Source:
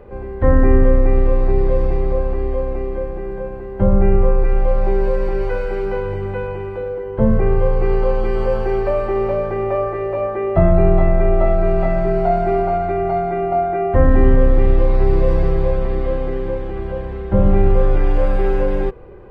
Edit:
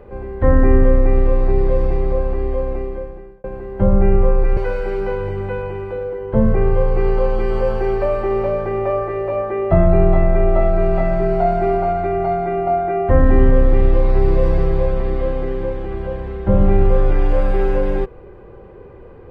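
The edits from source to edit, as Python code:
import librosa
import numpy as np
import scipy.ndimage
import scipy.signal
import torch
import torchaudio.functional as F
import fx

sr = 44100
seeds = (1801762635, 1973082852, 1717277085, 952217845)

y = fx.edit(x, sr, fx.fade_out_span(start_s=2.74, length_s=0.7),
    fx.cut(start_s=4.57, length_s=0.85), tone=tone)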